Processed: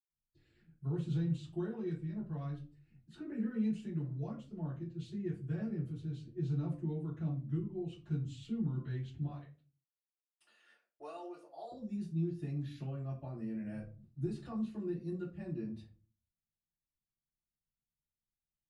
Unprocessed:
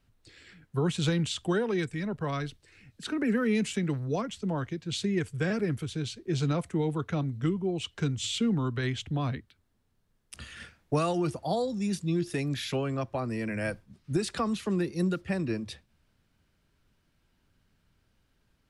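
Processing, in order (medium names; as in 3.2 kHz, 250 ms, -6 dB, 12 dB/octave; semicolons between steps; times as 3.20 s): 9.19–11.64 s: high-pass 470 Hz 24 dB/octave; gate -57 dBFS, range -21 dB; reverberation RT60 0.35 s, pre-delay 76 ms, DRR -60 dB; trim +4 dB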